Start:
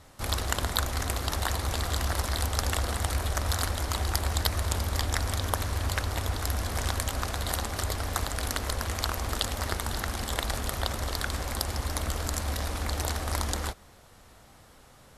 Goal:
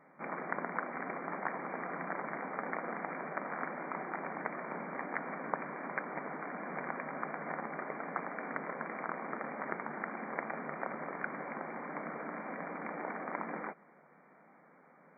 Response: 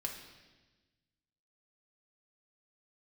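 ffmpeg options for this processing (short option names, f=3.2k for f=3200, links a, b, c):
-af "afftfilt=real='re*between(b*sr/4096,150,2400)':imag='im*between(b*sr/4096,150,2400)':win_size=4096:overlap=0.75,volume=-4dB"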